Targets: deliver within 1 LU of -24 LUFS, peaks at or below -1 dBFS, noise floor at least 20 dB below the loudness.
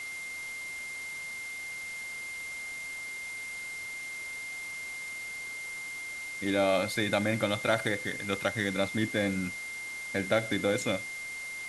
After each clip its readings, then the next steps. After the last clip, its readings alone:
steady tone 2100 Hz; tone level -37 dBFS; noise floor -40 dBFS; noise floor target -53 dBFS; loudness -32.5 LUFS; peak -12.5 dBFS; loudness target -24.0 LUFS
-> notch 2100 Hz, Q 30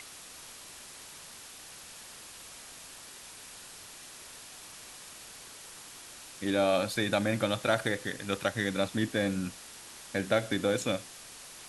steady tone none; noise floor -49 dBFS; noise floor target -51 dBFS
-> denoiser 6 dB, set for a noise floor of -49 dBFS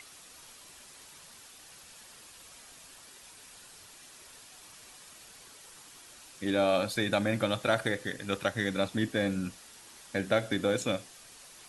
noise floor -53 dBFS; loudness -30.5 LUFS; peak -12.5 dBFS; loudness target -24.0 LUFS
-> gain +6.5 dB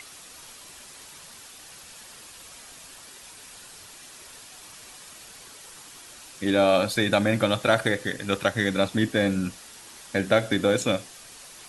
loudness -24.0 LUFS; peak -6.0 dBFS; noise floor -46 dBFS

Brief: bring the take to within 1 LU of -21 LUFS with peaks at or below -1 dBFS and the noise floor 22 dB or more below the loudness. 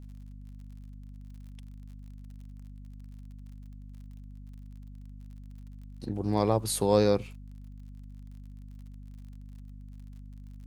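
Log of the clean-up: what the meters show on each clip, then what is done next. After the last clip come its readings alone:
ticks 47/s; hum 50 Hz; harmonics up to 250 Hz; hum level -43 dBFS; loudness -27.5 LUFS; peak -9.0 dBFS; loudness target -21.0 LUFS
-> de-click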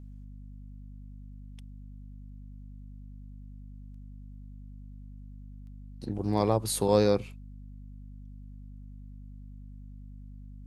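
ticks 0.19/s; hum 50 Hz; harmonics up to 250 Hz; hum level -43 dBFS
-> notches 50/100/150/200/250 Hz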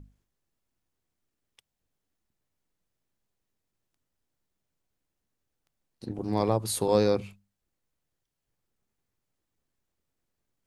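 hum none; loudness -27.0 LUFS; peak -9.5 dBFS; loudness target -21.0 LUFS
-> gain +6 dB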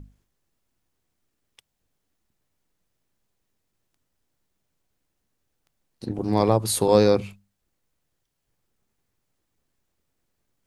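loudness -21.0 LUFS; peak -3.5 dBFS; noise floor -77 dBFS

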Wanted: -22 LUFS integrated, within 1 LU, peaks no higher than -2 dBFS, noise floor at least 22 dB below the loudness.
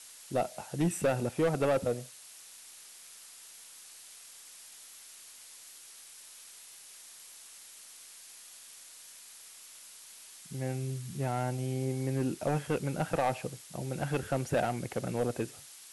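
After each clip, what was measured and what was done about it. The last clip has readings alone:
clipped 0.7%; flat tops at -22.5 dBFS; noise floor -52 dBFS; noise floor target -55 dBFS; loudness -33.0 LUFS; peak -22.5 dBFS; loudness target -22.0 LUFS
-> clip repair -22.5 dBFS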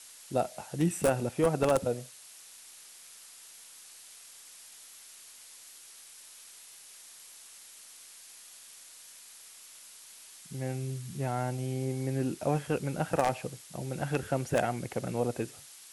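clipped 0.0%; noise floor -52 dBFS; noise floor target -54 dBFS
-> noise print and reduce 6 dB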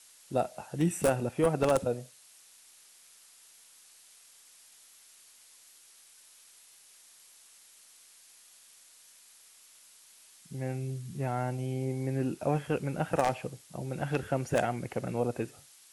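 noise floor -58 dBFS; loudness -32.0 LUFS; peak -13.5 dBFS; loudness target -22.0 LUFS
-> gain +10 dB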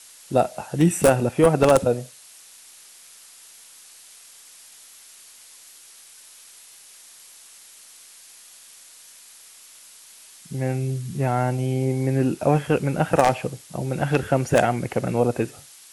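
loudness -22.0 LUFS; peak -3.5 dBFS; noise floor -48 dBFS

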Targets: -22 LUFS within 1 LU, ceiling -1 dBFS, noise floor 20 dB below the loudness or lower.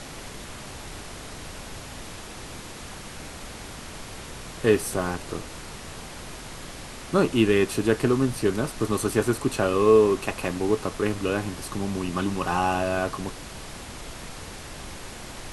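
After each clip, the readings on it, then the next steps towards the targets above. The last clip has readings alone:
noise floor -40 dBFS; noise floor target -45 dBFS; loudness -24.5 LUFS; peak -6.5 dBFS; loudness target -22.0 LUFS
-> noise print and reduce 6 dB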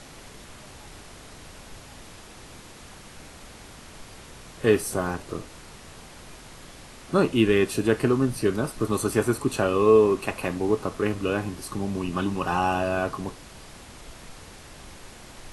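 noise floor -46 dBFS; loudness -24.5 LUFS; peak -6.5 dBFS; loudness target -22.0 LUFS
-> gain +2.5 dB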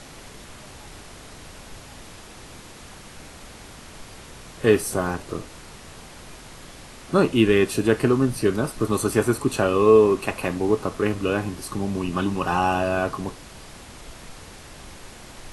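loudness -22.0 LUFS; peak -4.0 dBFS; noise floor -44 dBFS

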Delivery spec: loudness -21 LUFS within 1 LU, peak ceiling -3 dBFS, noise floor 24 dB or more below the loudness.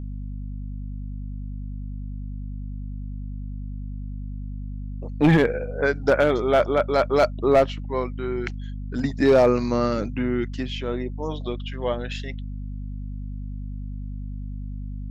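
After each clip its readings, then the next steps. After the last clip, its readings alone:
clipped 0.3%; flat tops at -10.5 dBFS; hum 50 Hz; harmonics up to 250 Hz; hum level -29 dBFS; loudness -25.5 LUFS; peak -10.5 dBFS; loudness target -21.0 LUFS
-> clip repair -10.5 dBFS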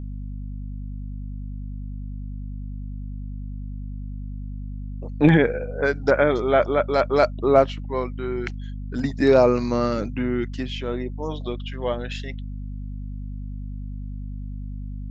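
clipped 0.0%; hum 50 Hz; harmonics up to 250 Hz; hum level -29 dBFS
-> notches 50/100/150/200/250 Hz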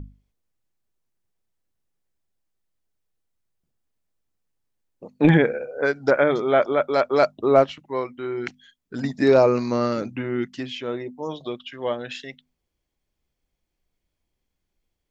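hum none; loudness -22.0 LUFS; peak -3.0 dBFS; loudness target -21.0 LUFS
-> gain +1 dB; limiter -3 dBFS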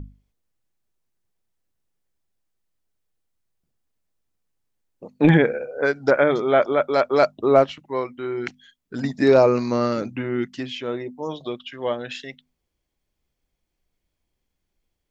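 loudness -21.0 LUFS; peak -3.0 dBFS; noise floor -79 dBFS

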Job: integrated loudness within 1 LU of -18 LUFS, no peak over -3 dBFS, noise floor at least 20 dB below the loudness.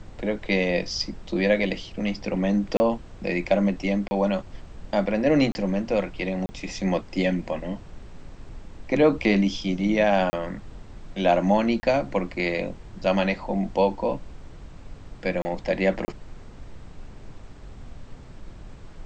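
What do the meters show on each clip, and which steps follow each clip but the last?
dropouts 8; longest dropout 30 ms; noise floor -44 dBFS; noise floor target -45 dBFS; loudness -25.0 LUFS; peak -7.0 dBFS; loudness target -18.0 LUFS
-> interpolate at 2.77/4.08/5.52/6.46/10.3/11.8/15.42/16.05, 30 ms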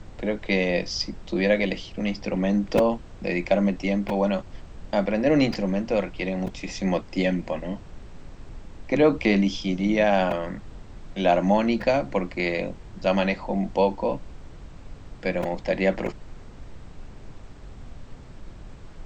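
dropouts 0; noise floor -44 dBFS; noise floor target -45 dBFS
-> noise print and reduce 6 dB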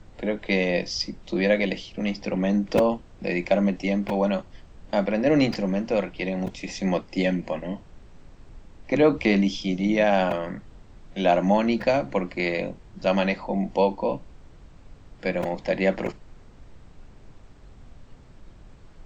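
noise floor -49 dBFS; loudness -25.0 LUFS; peak -6.0 dBFS; loudness target -18.0 LUFS
-> gain +7 dB; limiter -3 dBFS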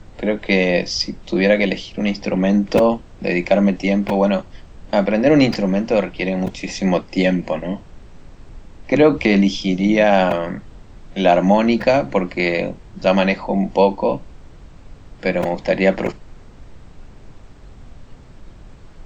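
loudness -18.0 LUFS; peak -3.0 dBFS; noise floor -42 dBFS

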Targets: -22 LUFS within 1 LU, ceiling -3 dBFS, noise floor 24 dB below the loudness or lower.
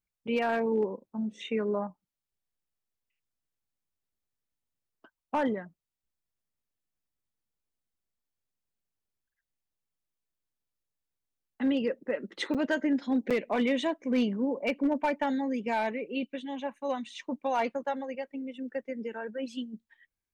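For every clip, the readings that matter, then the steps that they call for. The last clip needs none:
clipped 0.2%; flat tops at -20.5 dBFS; dropouts 2; longest dropout 6.6 ms; loudness -31.5 LUFS; peak -20.5 dBFS; loudness target -22.0 LUFS
-> clip repair -20.5 dBFS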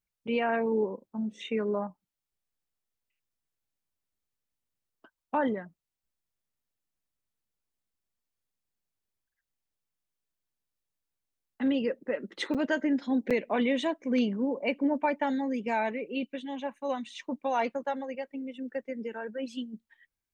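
clipped 0.0%; dropouts 2; longest dropout 6.6 ms
-> interpolate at 12.54/13.3, 6.6 ms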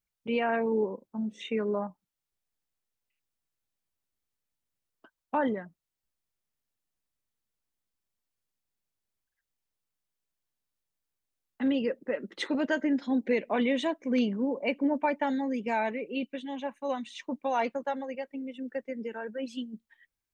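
dropouts 0; loudness -31.0 LUFS; peak -15.0 dBFS; loudness target -22.0 LUFS
-> gain +9 dB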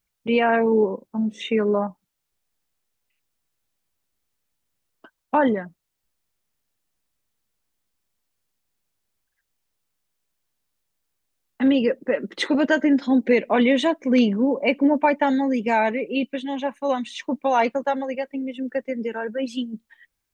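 loudness -22.0 LUFS; peak -6.0 dBFS; noise floor -79 dBFS

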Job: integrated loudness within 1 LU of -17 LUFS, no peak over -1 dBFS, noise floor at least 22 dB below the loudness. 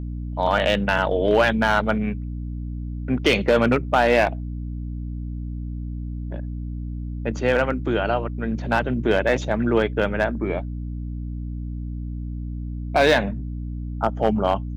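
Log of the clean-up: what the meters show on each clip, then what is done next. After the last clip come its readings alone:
clipped 0.7%; flat tops at -9.5 dBFS; hum 60 Hz; harmonics up to 300 Hz; hum level -27 dBFS; loudness -23.5 LUFS; peak -9.5 dBFS; loudness target -17.0 LUFS
-> clip repair -9.5 dBFS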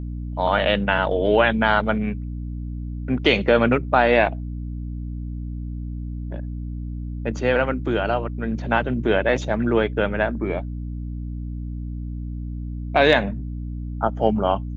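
clipped 0.0%; hum 60 Hz; harmonics up to 300 Hz; hum level -27 dBFS
-> de-hum 60 Hz, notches 5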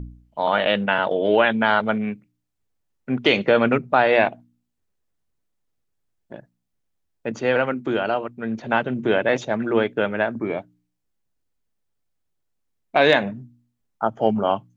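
hum none; loudness -21.0 LUFS; peak -3.0 dBFS; loudness target -17.0 LUFS
-> gain +4 dB; limiter -1 dBFS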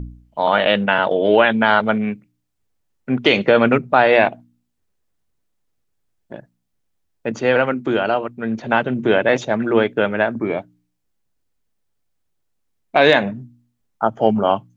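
loudness -17.5 LUFS; peak -1.0 dBFS; noise floor -71 dBFS

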